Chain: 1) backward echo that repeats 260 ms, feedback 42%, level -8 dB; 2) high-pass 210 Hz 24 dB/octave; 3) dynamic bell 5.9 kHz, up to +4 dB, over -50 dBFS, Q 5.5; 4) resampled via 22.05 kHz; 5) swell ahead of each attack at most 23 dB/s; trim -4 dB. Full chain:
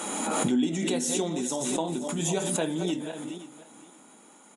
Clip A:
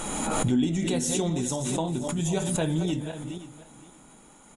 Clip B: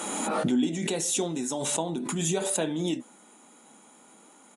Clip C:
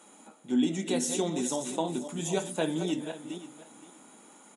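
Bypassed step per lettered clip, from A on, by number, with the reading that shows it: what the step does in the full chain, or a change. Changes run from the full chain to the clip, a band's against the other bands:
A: 2, 125 Hz band +7.5 dB; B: 1, momentary loudness spread change -7 LU; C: 5, momentary loudness spread change +2 LU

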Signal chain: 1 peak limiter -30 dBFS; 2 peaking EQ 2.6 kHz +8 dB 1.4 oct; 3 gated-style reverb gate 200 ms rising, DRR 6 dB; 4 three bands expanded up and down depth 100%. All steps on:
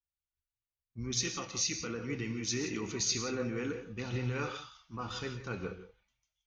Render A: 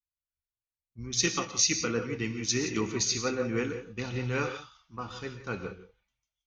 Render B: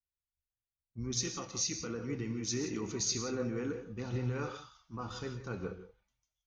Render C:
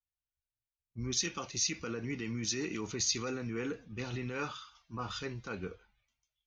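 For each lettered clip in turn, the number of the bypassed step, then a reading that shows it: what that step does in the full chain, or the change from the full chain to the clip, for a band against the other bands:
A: 1, mean gain reduction 2.5 dB; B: 2, 2 kHz band -5.0 dB; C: 3, 125 Hz band -2.0 dB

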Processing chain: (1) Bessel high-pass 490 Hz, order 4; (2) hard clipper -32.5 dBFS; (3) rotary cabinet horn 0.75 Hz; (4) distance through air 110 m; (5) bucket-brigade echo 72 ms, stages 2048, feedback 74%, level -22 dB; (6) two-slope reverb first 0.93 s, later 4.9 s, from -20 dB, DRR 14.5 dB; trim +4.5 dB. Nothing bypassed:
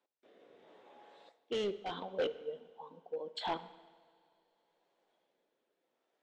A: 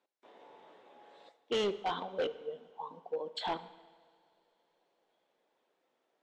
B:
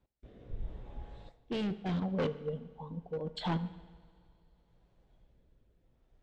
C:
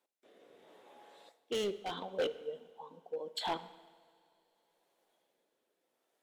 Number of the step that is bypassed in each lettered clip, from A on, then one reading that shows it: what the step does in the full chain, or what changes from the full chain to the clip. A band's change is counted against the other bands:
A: 3, 1 kHz band +2.0 dB; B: 1, 125 Hz band +20.5 dB; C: 4, 4 kHz band +2.0 dB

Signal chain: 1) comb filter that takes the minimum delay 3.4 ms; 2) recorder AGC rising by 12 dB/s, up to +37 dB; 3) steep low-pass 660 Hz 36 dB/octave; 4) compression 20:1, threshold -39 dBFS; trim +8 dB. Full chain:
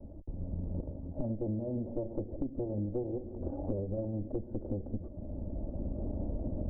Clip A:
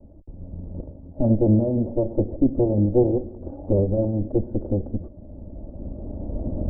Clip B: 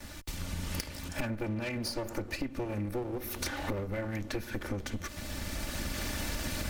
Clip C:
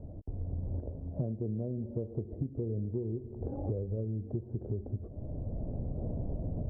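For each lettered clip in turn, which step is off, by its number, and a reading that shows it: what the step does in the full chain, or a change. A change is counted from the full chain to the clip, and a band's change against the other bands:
4, mean gain reduction 8.0 dB; 3, 1 kHz band +11.5 dB; 1, 125 Hz band +5.5 dB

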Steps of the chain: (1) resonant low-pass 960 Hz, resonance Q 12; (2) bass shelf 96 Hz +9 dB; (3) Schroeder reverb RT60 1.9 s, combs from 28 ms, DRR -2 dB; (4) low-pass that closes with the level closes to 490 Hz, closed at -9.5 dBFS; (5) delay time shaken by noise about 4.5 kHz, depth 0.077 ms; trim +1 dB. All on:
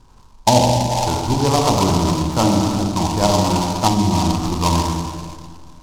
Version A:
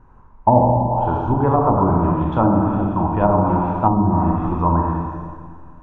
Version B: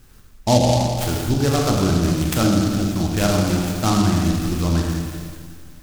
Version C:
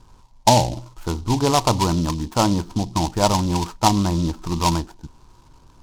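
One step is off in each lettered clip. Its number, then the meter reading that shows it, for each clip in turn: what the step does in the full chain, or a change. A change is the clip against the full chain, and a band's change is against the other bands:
5, 2 kHz band -6.5 dB; 1, 1 kHz band -6.5 dB; 3, momentary loudness spread change +4 LU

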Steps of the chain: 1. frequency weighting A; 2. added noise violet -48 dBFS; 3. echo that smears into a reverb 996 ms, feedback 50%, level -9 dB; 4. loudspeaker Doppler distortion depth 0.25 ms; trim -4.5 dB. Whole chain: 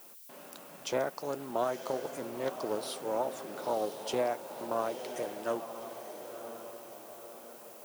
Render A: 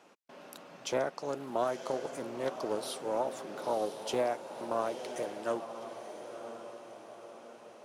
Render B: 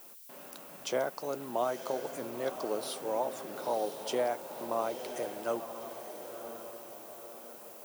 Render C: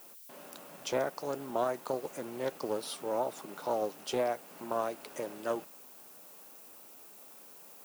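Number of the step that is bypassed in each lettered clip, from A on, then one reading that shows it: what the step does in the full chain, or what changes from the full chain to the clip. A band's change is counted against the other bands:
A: 2, momentary loudness spread change +2 LU; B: 4, 125 Hz band -2.5 dB; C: 3, momentary loudness spread change +2 LU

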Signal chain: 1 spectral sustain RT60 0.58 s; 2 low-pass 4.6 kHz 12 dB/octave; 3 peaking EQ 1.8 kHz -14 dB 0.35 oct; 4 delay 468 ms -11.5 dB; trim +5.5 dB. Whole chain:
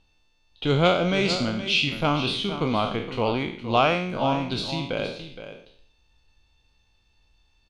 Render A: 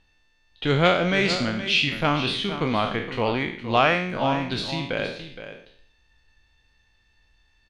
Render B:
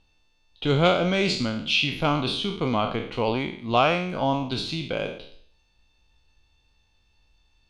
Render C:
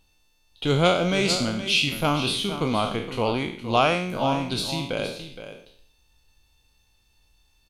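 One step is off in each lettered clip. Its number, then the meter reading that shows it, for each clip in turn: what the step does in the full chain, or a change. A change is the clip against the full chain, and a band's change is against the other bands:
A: 3, 2 kHz band +4.0 dB; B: 4, momentary loudness spread change -2 LU; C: 2, 8 kHz band +8.5 dB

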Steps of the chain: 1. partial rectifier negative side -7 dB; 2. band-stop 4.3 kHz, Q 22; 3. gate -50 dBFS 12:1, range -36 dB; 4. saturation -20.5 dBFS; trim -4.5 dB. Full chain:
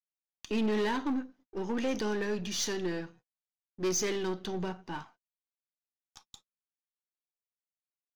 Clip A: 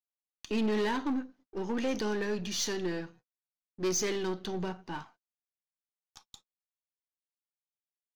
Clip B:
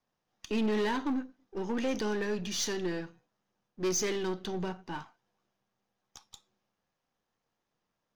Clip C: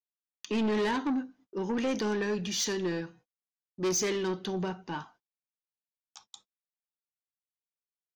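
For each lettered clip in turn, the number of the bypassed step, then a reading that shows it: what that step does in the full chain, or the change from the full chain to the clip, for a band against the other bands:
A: 2, momentary loudness spread change +1 LU; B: 3, momentary loudness spread change +1 LU; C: 1, distortion -8 dB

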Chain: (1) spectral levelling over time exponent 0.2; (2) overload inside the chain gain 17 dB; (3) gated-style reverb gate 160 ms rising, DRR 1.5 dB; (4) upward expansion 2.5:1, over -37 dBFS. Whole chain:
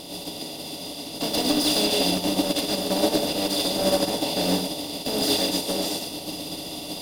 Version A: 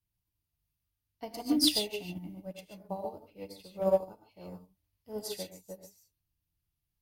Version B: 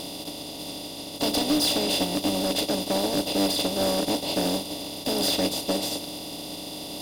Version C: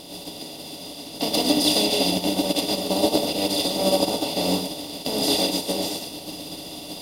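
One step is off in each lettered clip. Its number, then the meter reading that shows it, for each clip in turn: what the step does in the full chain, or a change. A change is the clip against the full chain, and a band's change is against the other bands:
1, 2 kHz band -4.5 dB; 3, crest factor change -6.0 dB; 2, distortion -14 dB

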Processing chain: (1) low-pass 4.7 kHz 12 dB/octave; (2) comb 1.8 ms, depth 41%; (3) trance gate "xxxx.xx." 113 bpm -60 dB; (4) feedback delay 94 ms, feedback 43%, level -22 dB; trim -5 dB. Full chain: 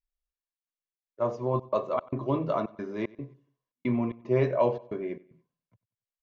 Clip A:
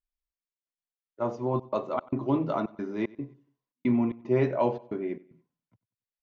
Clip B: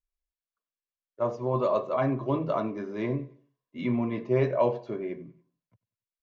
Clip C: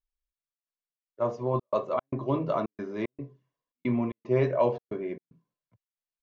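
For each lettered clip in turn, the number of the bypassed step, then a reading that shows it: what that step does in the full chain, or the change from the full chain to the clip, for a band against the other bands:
2, 250 Hz band +4.0 dB; 3, momentary loudness spread change -2 LU; 4, echo-to-direct -21.0 dB to none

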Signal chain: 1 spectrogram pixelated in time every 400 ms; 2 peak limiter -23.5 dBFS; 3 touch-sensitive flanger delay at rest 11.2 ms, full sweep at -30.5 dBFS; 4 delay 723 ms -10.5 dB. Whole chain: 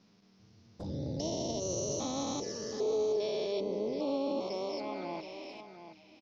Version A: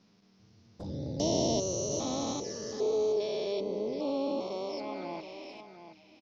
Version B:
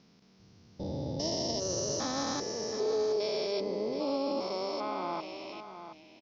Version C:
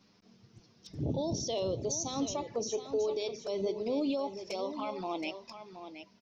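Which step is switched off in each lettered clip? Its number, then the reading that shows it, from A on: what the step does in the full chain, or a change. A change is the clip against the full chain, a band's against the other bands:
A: 2, crest factor change +5.0 dB; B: 3, 4 kHz band +4.5 dB; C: 1, 500 Hz band -2.0 dB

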